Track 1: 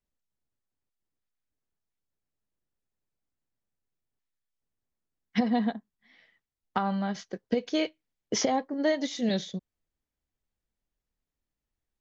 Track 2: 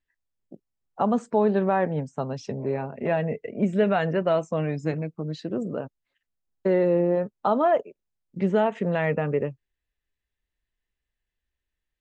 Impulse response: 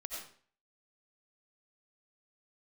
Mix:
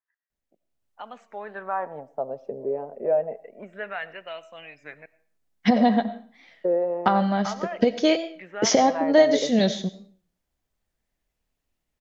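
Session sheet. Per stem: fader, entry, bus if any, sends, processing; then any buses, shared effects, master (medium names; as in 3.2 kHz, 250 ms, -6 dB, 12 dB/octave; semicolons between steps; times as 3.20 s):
-3.0 dB, 0.30 s, send -8.5 dB, level rider gain up to 8 dB
+1.0 dB, 0.00 s, muted 5.06–5.76 s, send -15.5 dB, wah-wah 0.28 Hz 450–2700 Hz, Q 2.7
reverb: on, RT60 0.50 s, pre-delay 50 ms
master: peaking EQ 670 Hz +4 dB 0.53 oct; warped record 33 1/3 rpm, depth 100 cents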